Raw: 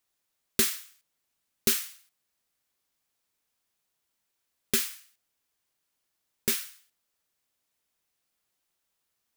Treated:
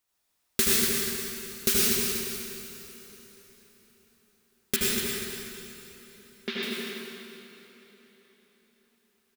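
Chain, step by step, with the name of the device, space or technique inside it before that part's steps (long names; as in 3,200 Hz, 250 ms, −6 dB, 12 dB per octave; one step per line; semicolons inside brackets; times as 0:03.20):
0:04.76–0:06.63: elliptic band-pass filter 200–3,800 Hz
repeating echo 242 ms, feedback 37%, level −8 dB
stairwell (convolution reverb RT60 1.7 s, pre-delay 72 ms, DRR −5 dB)
dense smooth reverb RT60 4.7 s, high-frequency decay 0.8×, DRR 9 dB
level −1 dB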